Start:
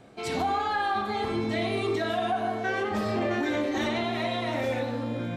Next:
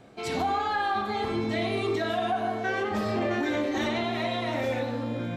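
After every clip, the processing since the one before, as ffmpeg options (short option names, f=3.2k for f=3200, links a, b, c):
-af "equalizer=f=9k:w=6.3:g=-4.5"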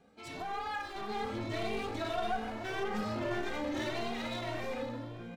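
-filter_complex "[0:a]dynaudnorm=f=390:g=5:m=6.5dB,aeval=exprs='clip(val(0),-1,0.0316)':c=same,asplit=2[a][b];[b]adelay=2.1,afreqshift=1.7[c];[a][c]amix=inputs=2:normalize=1,volume=-8.5dB"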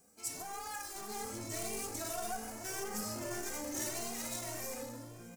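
-af "aexciter=amount=11:drive=8.8:freq=5.6k,volume=-6.5dB"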